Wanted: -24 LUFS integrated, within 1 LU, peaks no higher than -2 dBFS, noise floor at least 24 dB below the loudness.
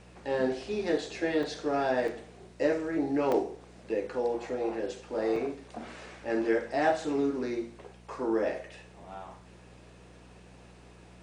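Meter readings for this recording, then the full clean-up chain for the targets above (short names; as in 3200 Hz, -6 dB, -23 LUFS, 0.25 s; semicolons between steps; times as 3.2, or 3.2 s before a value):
dropouts 4; longest dropout 2.3 ms; hum 60 Hz; harmonics up to 180 Hz; hum level -53 dBFS; loudness -31.0 LUFS; peak -13.0 dBFS; loudness target -24.0 LUFS
-> interpolate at 1.43/2.08/3.32/5.36, 2.3 ms; de-hum 60 Hz, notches 3; gain +7 dB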